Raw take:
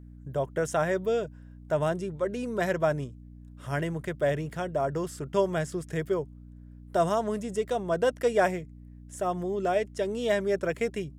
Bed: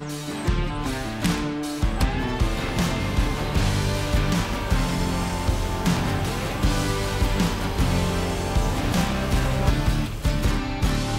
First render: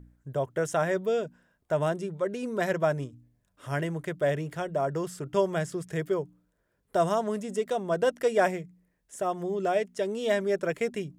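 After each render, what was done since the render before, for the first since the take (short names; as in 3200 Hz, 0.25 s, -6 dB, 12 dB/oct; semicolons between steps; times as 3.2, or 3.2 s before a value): de-hum 60 Hz, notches 5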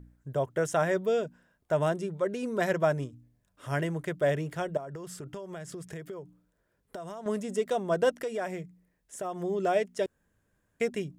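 4.77–7.26 compressor 16:1, threshold -36 dBFS; 8.16–9.36 compressor 3:1, threshold -32 dBFS; 10.06–10.8 room tone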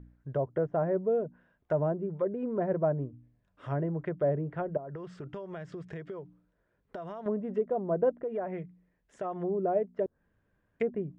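treble ducked by the level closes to 710 Hz, closed at -27.5 dBFS; LPF 2700 Hz 12 dB/oct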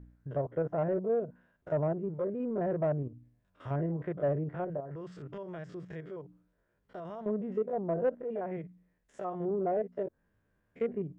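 stepped spectrum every 50 ms; soft clip -20 dBFS, distortion -23 dB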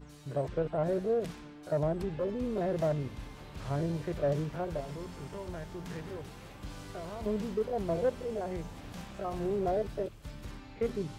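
add bed -22 dB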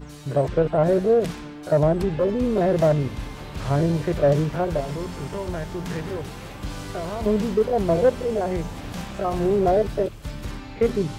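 gain +11.5 dB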